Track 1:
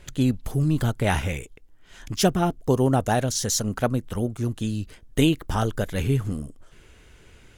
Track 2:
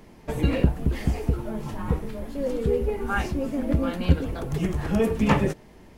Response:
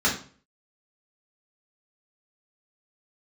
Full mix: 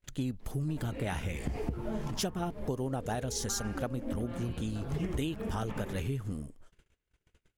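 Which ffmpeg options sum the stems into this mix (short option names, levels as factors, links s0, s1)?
-filter_complex "[0:a]volume=0.447,asplit=2[s0][s1];[1:a]highshelf=f=5100:g=-7.5,acompressor=threshold=0.0794:ratio=6,adelay=400,volume=0.891,asplit=2[s2][s3];[s3]volume=0.2[s4];[s1]apad=whole_len=281050[s5];[s2][s5]sidechaincompress=threshold=0.00708:ratio=8:attack=16:release=170[s6];[s4]aecho=0:1:85|170|255|340|425|510:1|0.43|0.185|0.0795|0.0342|0.0147[s7];[s0][s6][s7]amix=inputs=3:normalize=0,agate=range=0.0316:threshold=0.00224:ratio=16:detection=peak,acompressor=threshold=0.0316:ratio=5"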